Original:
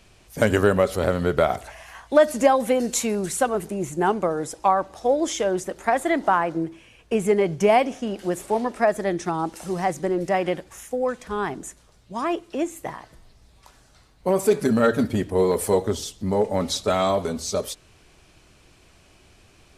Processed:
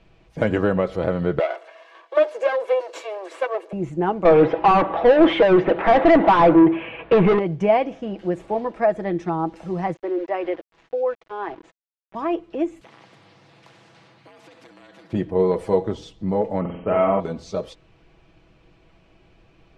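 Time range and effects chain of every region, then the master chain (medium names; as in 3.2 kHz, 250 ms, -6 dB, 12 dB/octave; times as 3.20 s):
1.39–3.73 s: comb filter that takes the minimum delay 1.8 ms + steep high-pass 330 Hz 48 dB/octave
4.25–7.39 s: low-pass 3.1 kHz 24 dB/octave + overdrive pedal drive 32 dB, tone 1.9 kHz, clips at -6 dBFS
9.94–12.15 s: steep high-pass 310 Hz + small samples zeroed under -36.5 dBFS + distance through air 110 m
12.81–15.13 s: compression 4:1, threshold -36 dBFS + frequency shift +82 Hz + spectrum-flattening compressor 4:1
16.60–17.20 s: brick-wall FIR low-pass 3.2 kHz + flutter echo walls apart 7.9 m, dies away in 0.66 s
whole clip: low-pass 2.4 kHz 12 dB/octave; peaking EQ 1.5 kHz -4.5 dB 1.1 oct; comb 6.1 ms, depth 46%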